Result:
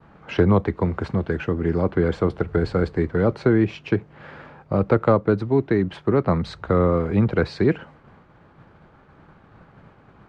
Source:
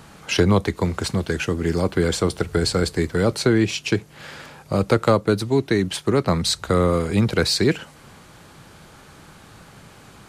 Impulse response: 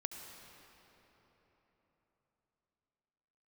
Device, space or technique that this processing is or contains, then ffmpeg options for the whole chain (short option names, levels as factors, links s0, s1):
hearing-loss simulation: -af "lowpass=1600,agate=range=0.0224:threshold=0.00794:ratio=3:detection=peak"